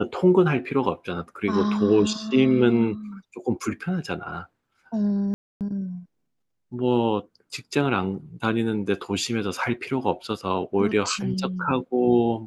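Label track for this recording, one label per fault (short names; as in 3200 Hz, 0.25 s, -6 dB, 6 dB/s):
5.340000	5.610000	gap 0.268 s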